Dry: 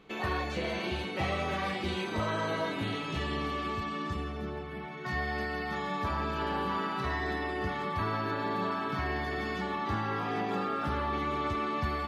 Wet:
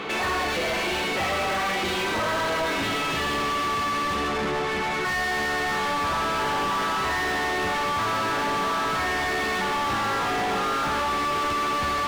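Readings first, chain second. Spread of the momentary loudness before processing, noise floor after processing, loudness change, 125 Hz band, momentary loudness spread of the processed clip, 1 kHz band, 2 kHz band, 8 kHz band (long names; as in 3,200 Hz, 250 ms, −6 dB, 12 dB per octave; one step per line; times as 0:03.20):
3 LU, −26 dBFS, +8.5 dB, −0.5 dB, 1 LU, +9.0 dB, +10.5 dB, can't be measured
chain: mid-hump overdrive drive 38 dB, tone 3,200 Hz, clips at −19 dBFS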